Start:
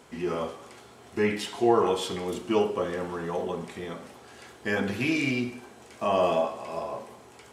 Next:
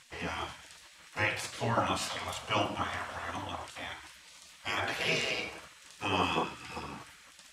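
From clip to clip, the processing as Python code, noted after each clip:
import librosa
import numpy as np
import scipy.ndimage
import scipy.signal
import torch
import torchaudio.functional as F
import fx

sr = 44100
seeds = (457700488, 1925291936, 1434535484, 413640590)

y = fx.spec_gate(x, sr, threshold_db=-15, keep='weak')
y = fx.high_shelf(y, sr, hz=7700.0, db=-7.5)
y = y * librosa.db_to_amplitude(5.5)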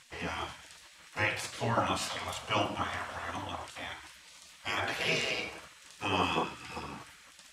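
y = x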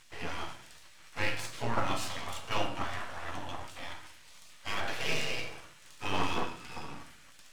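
y = np.where(x < 0.0, 10.0 ** (-12.0 / 20.0) * x, x)
y = fx.room_shoebox(y, sr, seeds[0], volume_m3=57.0, walls='mixed', distance_m=0.32)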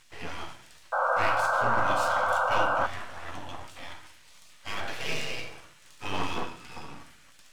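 y = fx.spec_paint(x, sr, seeds[1], shape='noise', start_s=0.92, length_s=1.95, low_hz=490.0, high_hz=1600.0, level_db=-26.0)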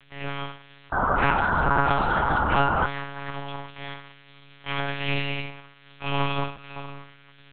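y = fx.lpc_monotone(x, sr, seeds[2], pitch_hz=140.0, order=8)
y = y * librosa.db_to_amplitude(3.0)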